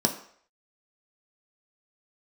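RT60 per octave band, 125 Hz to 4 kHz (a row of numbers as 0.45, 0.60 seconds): 0.35, 0.45, 0.60, 0.60, 0.60, 0.55 seconds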